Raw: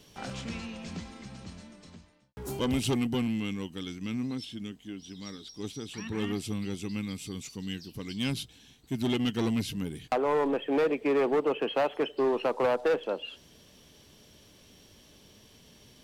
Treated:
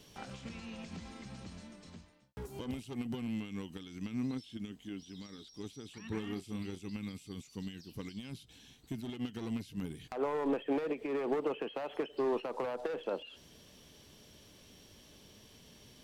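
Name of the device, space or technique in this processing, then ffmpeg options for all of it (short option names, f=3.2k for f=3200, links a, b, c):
de-esser from a sidechain: -filter_complex "[0:a]asettb=1/sr,asplit=3[a][b][c];[a]atrim=end=6.214[d];[b]atrim=start=6.21:end=6.8,asetpts=PTS-STARTPTS,afade=t=in:d=0.004:c=qsin,afade=t=out:st=0.586:d=0.004:c=qsin,asplit=2[e][f];[f]adelay=33,volume=-9dB[g];[e][g]amix=inputs=2:normalize=0,atrim=end_sample=26019[h];[c]atrim=start=6.796[i];[d][h]acrossfade=d=0.004:c1=hsin:c2=qsin[j];[j][i]acrossfade=d=0.004:c1=qsin:c2=hsin,asplit=2[k][l];[l]highpass=4.6k,apad=whole_len=706952[m];[k][m]sidechaincompress=threshold=-55dB:ratio=6:attack=2:release=73,volume=-1.5dB"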